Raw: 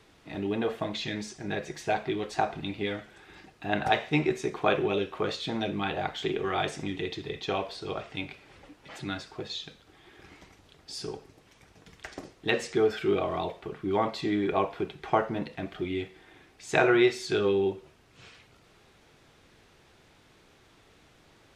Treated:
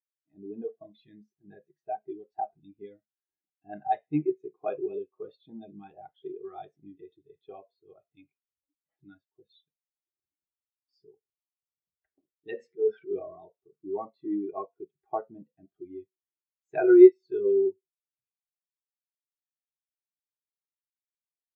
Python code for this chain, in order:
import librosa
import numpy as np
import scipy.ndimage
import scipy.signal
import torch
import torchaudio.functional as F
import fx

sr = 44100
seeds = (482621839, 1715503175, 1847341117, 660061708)

y = fx.transient(x, sr, attack_db=-11, sustain_db=5, at=(12.57, 13.45), fade=0.02)
y = fx.spectral_expand(y, sr, expansion=2.5)
y = y * librosa.db_to_amplitude(5.0)